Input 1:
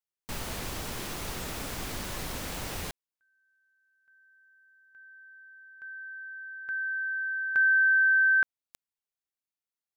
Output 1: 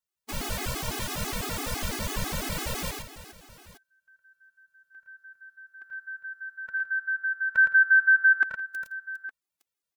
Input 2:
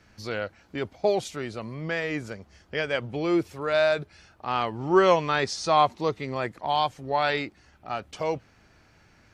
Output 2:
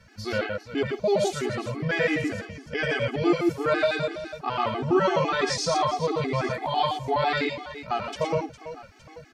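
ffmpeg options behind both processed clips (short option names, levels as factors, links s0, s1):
-filter_complex "[0:a]alimiter=limit=0.119:level=0:latency=1:release=24,asplit=2[s0][s1];[s1]aecho=0:1:83|113|165|406|863:0.422|0.596|0.126|0.224|0.133[s2];[s0][s2]amix=inputs=2:normalize=0,afftfilt=real='re*gt(sin(2*PI*6*pts/sr)*(1-2*mod(floor(b*sr/1024/220),2)),0)':imag='im*gt(sin(2*PI*6*pts/sr)*(1-2*mod(floor(b*sr/1024/220),2)),0)':win_size=1024:overlap=0.75,volume=2"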